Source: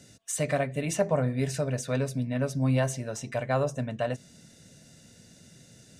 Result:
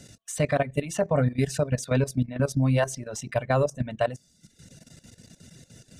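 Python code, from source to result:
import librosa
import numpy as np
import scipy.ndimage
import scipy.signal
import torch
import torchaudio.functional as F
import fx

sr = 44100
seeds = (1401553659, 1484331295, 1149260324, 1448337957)

y = fx.dereverb_blind(x, sr, rt60_s=0.76)
y = fx.low_shelf(y, sr, hz=66.0, db=8.5)
y = fx.level_steps(y, sr, step_db=14)
y = F.gain(torch.from_numpy(y), 7.0).numpy()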